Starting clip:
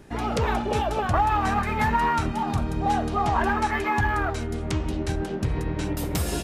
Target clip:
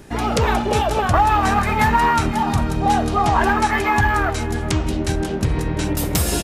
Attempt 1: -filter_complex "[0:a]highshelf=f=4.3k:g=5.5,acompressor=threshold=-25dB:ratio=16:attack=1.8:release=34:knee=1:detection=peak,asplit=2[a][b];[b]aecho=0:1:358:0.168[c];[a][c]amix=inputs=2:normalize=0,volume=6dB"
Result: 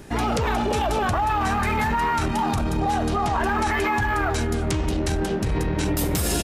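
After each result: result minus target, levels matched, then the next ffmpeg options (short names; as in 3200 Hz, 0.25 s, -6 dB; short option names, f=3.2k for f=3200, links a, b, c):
compressor: peak gain reduction +10 dB; echo 0.165 s early
-filter_complex "[0:a]highshelf=f=4.3k:g=5.5,asplit=2[a][b];[b]aecho=0:1:358:0.168[c];[a][c]amix=inputs=2:normalize=0,volume=6dB"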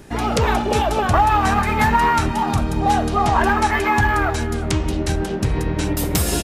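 echo 0.165 s early
-filter_complex "[0:a]highshelf=f=4.3k:g=5.5,asplit=2[a][b];[b]aecho=0:1:523:0.168[c];[a][c]amix=inputs=2:normalize=0,volume=6dB"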